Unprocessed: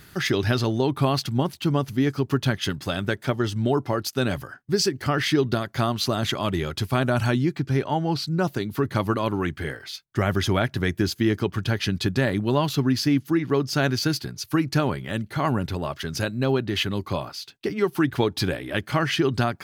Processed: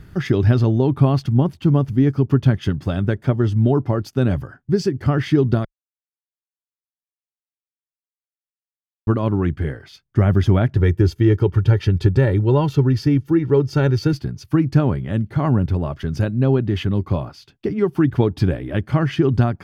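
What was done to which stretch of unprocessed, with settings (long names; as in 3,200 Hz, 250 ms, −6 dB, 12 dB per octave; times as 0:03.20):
0:05.65–0:09.07: silence
0:10.76–0:14.13: comb filter 2.2 ms, depth 64%
whole clip: spectral tilt −3.5 dB per octave; notch filter 4,000 Hz, Q 14; level −1 dB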